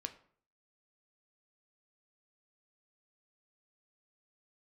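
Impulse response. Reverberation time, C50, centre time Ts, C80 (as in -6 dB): 0.55 s, 14.5 dB, 7 ms, 18.0 dB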